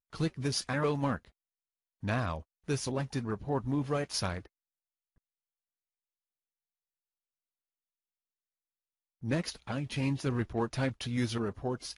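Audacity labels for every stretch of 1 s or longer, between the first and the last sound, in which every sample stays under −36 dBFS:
4.390000	9.240000	silence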